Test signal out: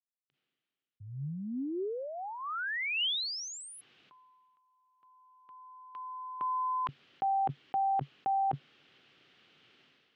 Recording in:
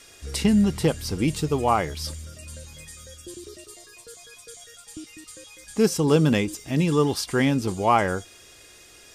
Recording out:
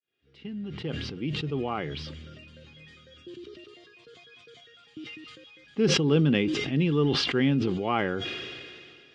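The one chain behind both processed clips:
fade in at the beginning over 2.49 s
loudspeaker in its box 130–3,600 Hz, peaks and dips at 140 Hz +7 dB, 260 Hz +4 dB, 380 Hz +4 dB, 630 Hz −5 dB, 960 Hz −8 dB, 3,000 Hz +6 dB
level that may fall only so fast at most 27 dB per second
level −6 dB

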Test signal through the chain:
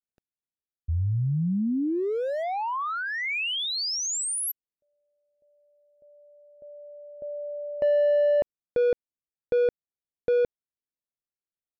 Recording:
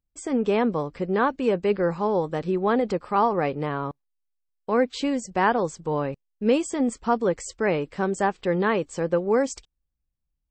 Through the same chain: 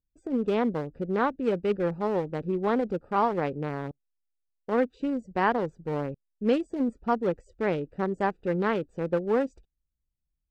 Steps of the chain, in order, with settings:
adaptive Wiener filter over 41 samples
level −2.5 dB

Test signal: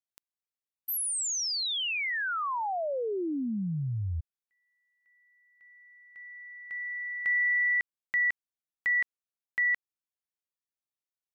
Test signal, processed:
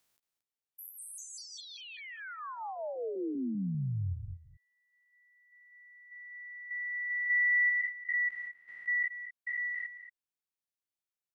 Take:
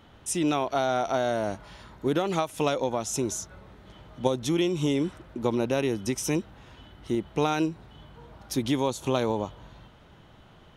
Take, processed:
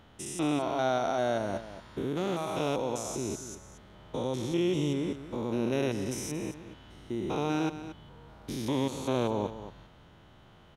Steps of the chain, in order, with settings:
spectrum averaged block by block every 200 ms
single-tap delay 227 ms −12.5 dB
level −1.5 dB

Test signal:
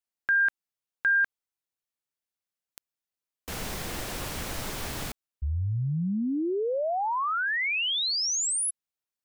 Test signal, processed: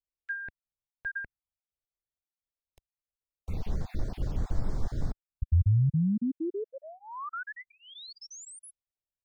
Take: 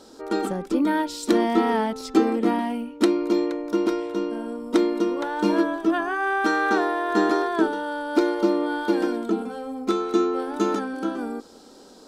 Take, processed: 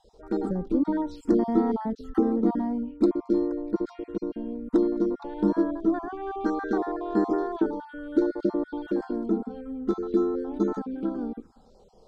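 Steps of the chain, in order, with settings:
time-frequency cells dropped at random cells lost 23%
RIAA equalisation playback
phaser swept by the level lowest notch 230 Hz, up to 2,700 Hz, full sweep at −18.5 dBFS
level −6.5 dB

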